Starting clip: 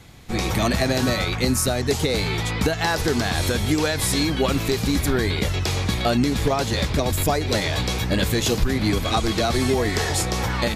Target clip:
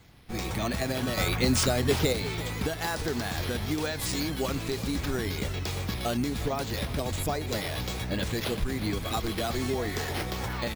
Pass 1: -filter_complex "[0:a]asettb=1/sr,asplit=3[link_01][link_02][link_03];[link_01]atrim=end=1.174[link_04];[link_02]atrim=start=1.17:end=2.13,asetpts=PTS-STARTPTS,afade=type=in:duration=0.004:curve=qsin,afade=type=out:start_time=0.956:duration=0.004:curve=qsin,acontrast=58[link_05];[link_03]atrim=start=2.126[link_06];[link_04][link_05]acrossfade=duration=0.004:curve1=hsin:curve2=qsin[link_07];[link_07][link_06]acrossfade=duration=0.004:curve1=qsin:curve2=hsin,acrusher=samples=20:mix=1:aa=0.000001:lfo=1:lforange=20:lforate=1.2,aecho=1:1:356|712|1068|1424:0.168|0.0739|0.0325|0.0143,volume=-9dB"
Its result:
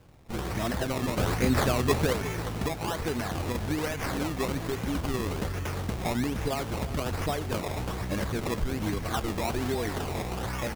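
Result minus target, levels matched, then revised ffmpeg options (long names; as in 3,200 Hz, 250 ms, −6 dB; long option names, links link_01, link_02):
sample-and-hold swept by an LFO: distortion +7 dB
-filter_complex "[0:a]asettb=1/sr,asplit=3[link_01][link_02][link_03];[link_01]atrim=end=1.174[link_04];[link_02]atrim=start=1.17:end=2.13,asetpts=PTS-STARTPTS,afade=type=in:duration=0.004:curve=qsin,afade=type=out:start_time=0.956:duration=0.004:curve=qsin,acontrast=58[link_05];[link_03]atrim=start=2.126[link_06];[link_04][link_05]acrossfade=duration=0.004:curve1=hsin:curve2=qsin[link_07];[link_07][link_06]acrossfade=duration=0.004:curve1=qsin:curve2=hsin,acrusher=samples=4:mix=1:aa=0.000001:lfo=1:lforange=4:lforate=1.2,aecho=1:1:356|712|1068|1424:0.168|0.0739|0.0325|0.0143,volume=-9dB"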